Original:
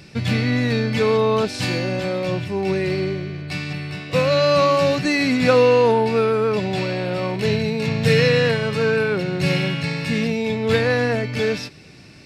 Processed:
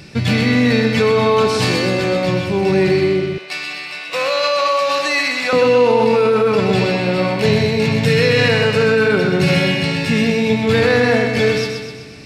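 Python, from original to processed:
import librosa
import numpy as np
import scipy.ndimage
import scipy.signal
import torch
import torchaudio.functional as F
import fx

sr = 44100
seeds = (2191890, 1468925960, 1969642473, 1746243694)

p1 = fx.echo_feedback(x, sr, ms=126, feedback_pct=54, wet_db=-5.5)
p2 = fx.over_compress(p1, sr, threshold_db=-18.0, ratio=-0.5)
p3 = p1 + (p2 * 10.0 ** (-1.0 / 20.0))
p4 = fx.highpass(p3, sr, hz=690.0, slope=12, at=(3.38, 5.53))
y = p4 * 10.0 ** (-1.0 / 20.0)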